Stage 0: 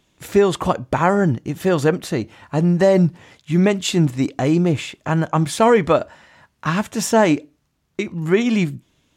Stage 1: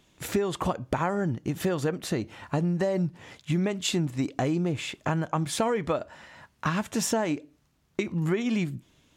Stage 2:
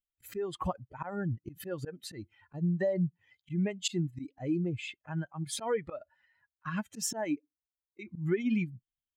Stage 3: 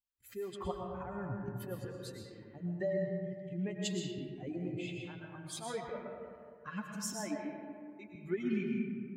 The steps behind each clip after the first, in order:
compression 6:1, threshold -24 dBFS, peak gain reduction 14 dB
expander on every frequency bin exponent 2; slow attack 112 ms
comb of notches 160 Hz; algorithmic reverb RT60 2.2 s, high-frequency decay 0.4×, pre-delay 75 ms, DRR 0.5 dB; trim -5.5 dB

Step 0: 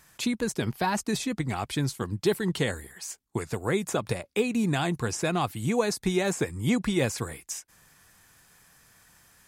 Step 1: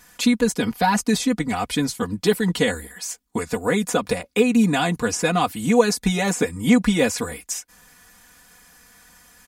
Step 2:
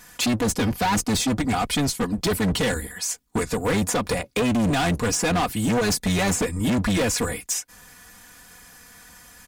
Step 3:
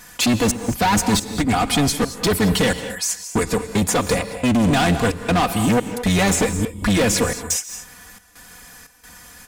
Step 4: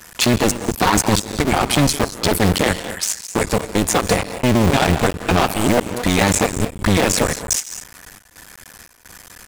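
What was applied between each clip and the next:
comb 4.1 ms, depth 92%; trim +4.5 dB
octave divider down 1 oct, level -6 dB; peak limiter -10.5 dBFS, peak gain reduction 8.5 dB; overload inside the chain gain 22.5 dB; trim +3.5 dB
trance gate "xxx.xxx.x" 88 bpm -60 dB; gated-style reverb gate 250 ms rising, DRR 9.5 dB; trim +4.5 dB
cycle switcher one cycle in 2, muted; trim +4.5 dB

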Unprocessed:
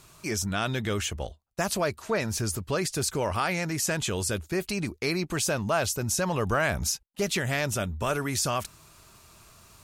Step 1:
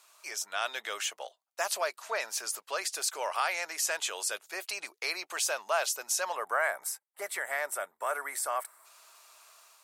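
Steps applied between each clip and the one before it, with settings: high-pass 610 Hz 24 dB/octave; time-frequency box 6.36–8.85 s, 2.3–7.4 kHz -13 dB; level rider gain up to 4 dB; trim -5.5 dB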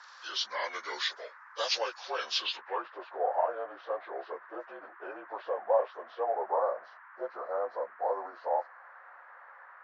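frequency axis rescaled in octaves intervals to 81%; low-pass sweep 5.4 kHz -> 710 Hz, 2.34–2.89 s; band noise 930–1800 Hz -53 dBFS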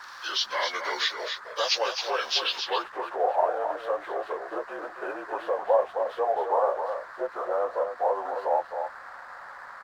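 in parallel at +0.5 dB: compression, threshold -40 dBFS, peak gain reduction 18 dB; on the sum: hysteresis with a dead band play -51.5 dBFS; delay 265 ms -7 dB; trim +3 dB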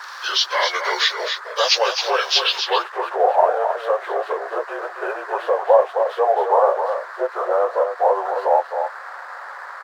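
brick-wall FIR high-pass 350 Hz; trim +8.5 dB

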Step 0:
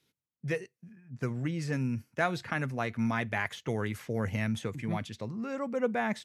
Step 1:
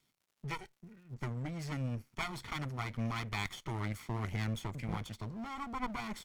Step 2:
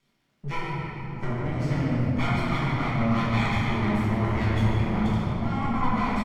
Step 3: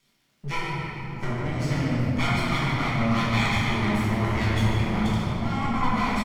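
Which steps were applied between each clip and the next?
comb filter that takes the minimum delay 0.9 ms; crackle 200 per s -61 dBFS; one-sided clip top -41.5 dBFS; trim -1.5 dB
low-pass 3.1 kHz 6 dB/octave; frequency-shifting echo 144 ms, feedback 55%, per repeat -33 Hz, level -10.5 dB; simulated room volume 160 m³, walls hard, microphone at 1.2 m; trim +3.5 dB
treble shelf 2.7 kHz +10 dB

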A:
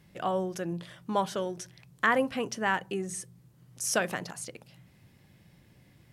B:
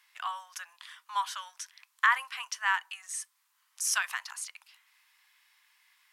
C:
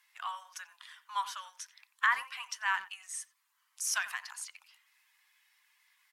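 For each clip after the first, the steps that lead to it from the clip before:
elliptic high-pass 1 kHz, stop band 60 dB; trim +2.5 dB
coarse spectral quantiser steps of 15 dB; speakerphone echo 90 ms, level -15 dB; trim -3 dB

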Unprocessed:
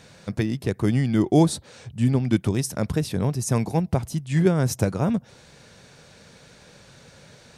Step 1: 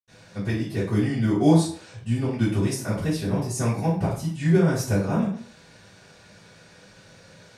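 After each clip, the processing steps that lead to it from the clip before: reverberation RT60 0.50 s, pre-delay 76 ms; trim -4 dB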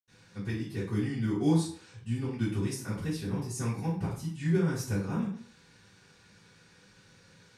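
peaking EQ 630 Hz -14.5 dB 0.35 oct; trim -7.5 dB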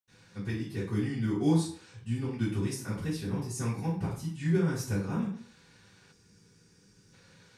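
time-frequency box 6.13–7.13 s, 480–4600 Hz -10 dB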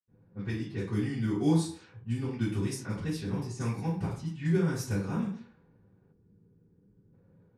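level-controlled noise filter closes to 420 Hz, open at -28.5 dBFS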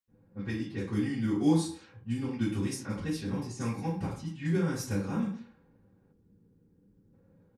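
comb 3.7 ms, depth 37%

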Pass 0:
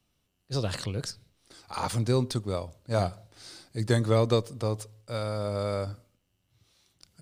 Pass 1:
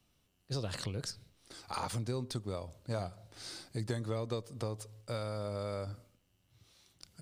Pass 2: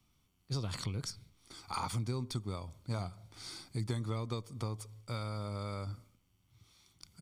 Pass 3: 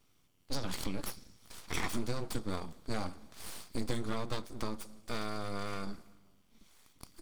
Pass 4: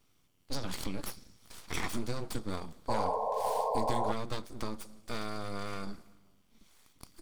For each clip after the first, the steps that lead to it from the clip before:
compression 4:1, threshold -36 dBFS, peak gain reduction 15 dB; trim +1 dB
comb 0.9 ms, depth 52%; trim -1.5 dB
two-slope reverb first 0.23 s, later 1.8 s, from -18 dB, DRR 11 dB; full-wave rectifier; trim +4 dB
painted sound noise, 2.88–4.12 s, 420–1100 Hz -32 dBFS

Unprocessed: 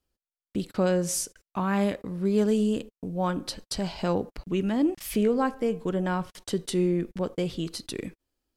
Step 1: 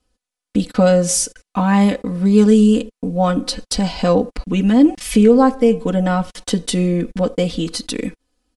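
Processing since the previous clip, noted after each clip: steep low-pass 11 kHz 72 dB/octave; dynamic bell 1.5 kHz, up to -3 dB, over -41 dBFS, Q 0.83; comb 4 ms, depth 95%; trim +9 dB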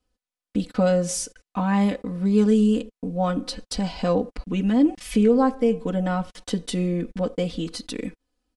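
treble shelf 5.9 kHz -5.5 dB; trim -7 dB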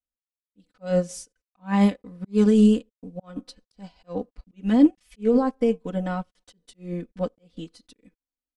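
slow attack 200 ms; loudness maximiser +12 dB; upward expansion 2.5:1, over -25 dBFS; trim -5.5 dB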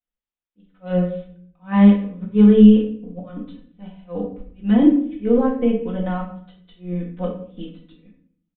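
simulated room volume 81 m³, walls mixed, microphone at 0.86 m; resampled via 8 kHz; trim -1 dB

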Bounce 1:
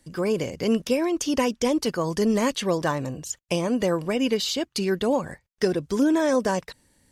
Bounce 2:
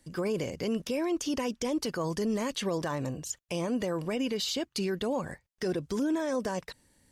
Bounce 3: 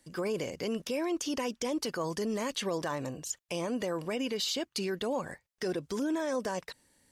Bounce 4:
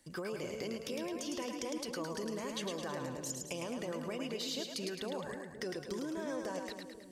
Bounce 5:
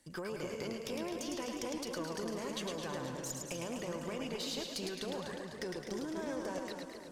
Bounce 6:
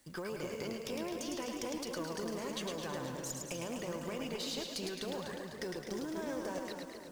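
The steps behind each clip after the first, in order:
peak limiter -19.5 dBFS, peak gain reduction 10 dB; trim -3 dB
bass shelf 200 Hz -9 dB
compression, threshold -37 dBFS, peak gain reduction 9 dB; on a send: two-band feedback delay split 510 Hz, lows 260 ms, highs 107 ms, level -4 dB; on the sum: trim -1 dB
valve stage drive 28 dB, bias 0.65; modulated delay 251 ms, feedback 56%, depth 124 cents, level -9 dB; trim +2.5 dB
companded quantiser 6-bit

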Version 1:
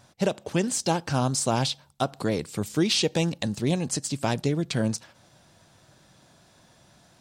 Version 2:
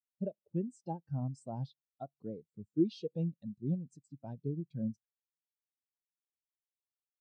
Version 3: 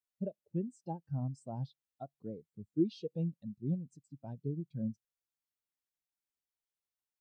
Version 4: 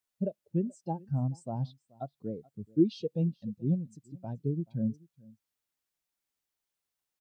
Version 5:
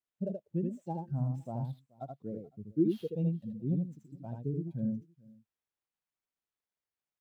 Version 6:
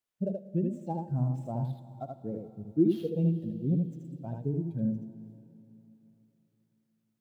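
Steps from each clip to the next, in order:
spectral contrast expander 2.5:1; trim -6.5 dB
bass shelf 75 Hz +6.5 dB; trim -1.5 dB
delay 430 ms -24 dB; trim +6 dB
median filter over 9 samples; delay 78 ms -3.5 dB; trim -4 dB
reverberation RT60 3.4 s, pre-delay 36 ms, DRR 13 dB; trim +3.5 dB

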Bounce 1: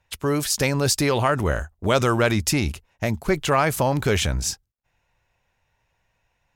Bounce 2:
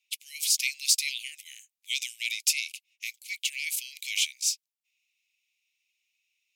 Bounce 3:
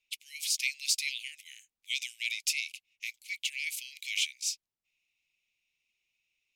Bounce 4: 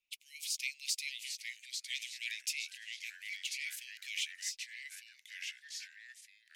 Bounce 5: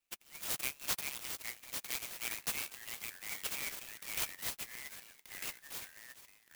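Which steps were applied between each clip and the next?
steep high-pass 2.2 kHz 96 dB/octave
tilt EQ -3 dB/octave; trim +2 dB
ever faster or slower copies 738 ms, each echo -2 st, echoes 3, each echo -6 dB; trim -7 dB
sampling jitter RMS 0.076 ms; trim +1 dB

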